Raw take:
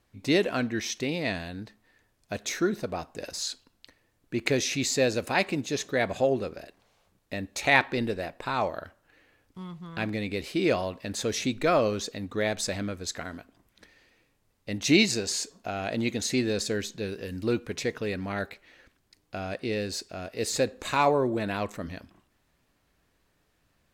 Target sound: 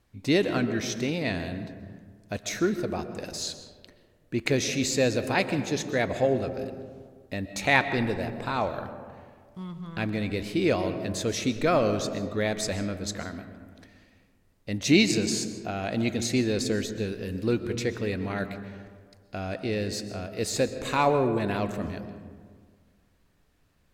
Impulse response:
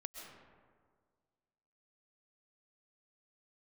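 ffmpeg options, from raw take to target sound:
-filter_complex "[0:a]asplit=2[link_01][link_02];[1:a]atrim=start_sample=2205,lowshelf=frequency=290:gain=10.5[link_03];[link_02][link_03]afir=irnorm=-1:irlink=0,volume=0dB[link_04];[link_01][link_04]amix=inputs=2:normalize=0,volume=-4.5dB"

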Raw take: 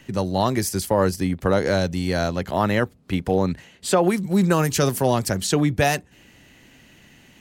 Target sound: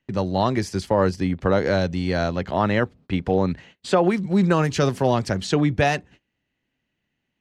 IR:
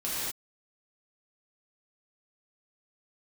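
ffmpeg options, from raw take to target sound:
-af "lowpass=4400,agate=range=-26dB:threshold=-45dB:ratio=16:detection=peak"

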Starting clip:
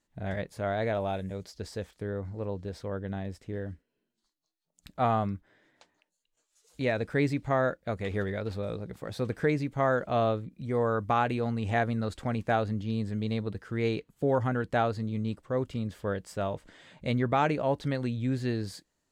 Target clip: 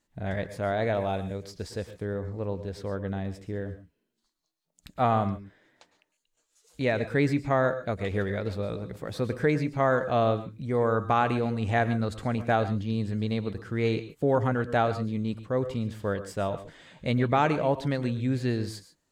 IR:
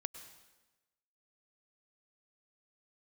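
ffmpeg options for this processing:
-filter_complex "[1:a]atrim=start_sample=2205,afade=type=out:start_time=0.19:duration=0.01,atrim=end_sample=8820,asetrate=42336,aresample=44100[link_01];[0:a][link_01]afir=irnorm=-1:irlink=0,volume=4.5dB"

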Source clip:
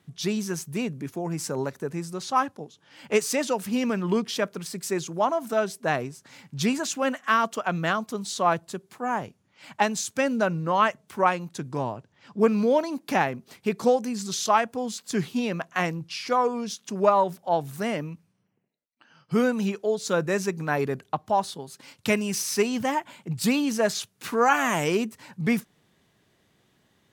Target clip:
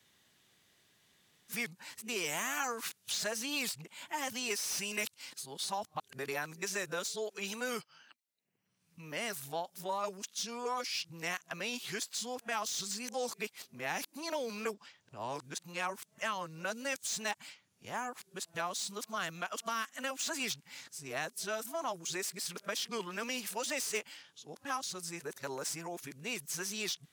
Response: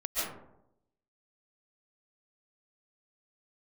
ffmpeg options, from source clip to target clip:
-filter_complex "[0:a]areverse,tiltshelf=frequency=1400:gain=-7,acrossover=split=390|2800[link_01][link_02][link_03];[link_03]asoftclip=type=tanh:threshold=-27dB[link_04];[link_01][link_02][link_04]amix=inputs=3:normalize=0,acrossover=split=360|4900[link_05][link_06][link_07];[link_05]acompressor=threshold=-47dB:ratio=4[link_08];[link_06]acompressor=threshold=-32dB:ratio=4[link_09];[link_07]acompressor=threshold=-35dB:ratio=4[link_10];[link_08][link_09][link_10]amix=inputs=3:normalize=0,volume=-3.5dB"

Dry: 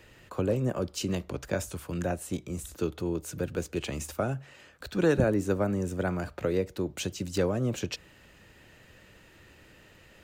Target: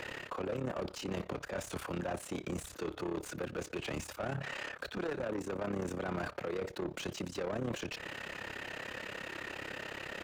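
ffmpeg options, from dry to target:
ffmpeg -i in.wav -filter_complex "[0:a]areverse,acompressor=threshold=-37dB:ratio=10,areverse,alimiter=level_in=10dB:limit=-24dB:level=0:latency=1:release=127,volume=-10dB,tremolo=f=34:d=0.919,asplit=2[link_01][link_02];[link_02]highpass=frequency=720:poles=1,volume=25dB,asoftclip=type=tanh:threshold=-34dB[link_03];[link_01][link_03]amix=inputs=2:normalize=0,lowpass=frequency=1900:poles=1,volume=-6dB,volume=6dB" out.wav

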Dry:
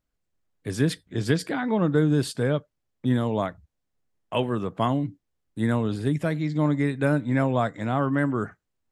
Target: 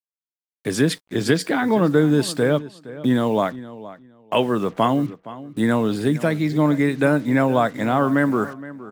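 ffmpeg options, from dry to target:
ffmpeg -i in.wav -filter_complex "[0:a]highpass=180,asplit=2[link_01][link_02];[link_02]acompressor=threshold=-32dB:ratio=12,volume=1.5dB[link_03];[link_01][link_03]amix=inputs=2:normalize=0,acrusher=bits=7:mix=0:aa=0.5,asplit=2[link_04][link_05];[link_05]adelay=467,lowpass=frequency=3600:poles=1,volume=-16.5dB,asplit=2[link_06][link_07];[link_07]adelay=467,lowpass=frequency=3600:poles=1,volume=0.19[link_08];[link_04][link_06][link_08]amix=inputs=3:normalize=0,volume=4dB" out.wav

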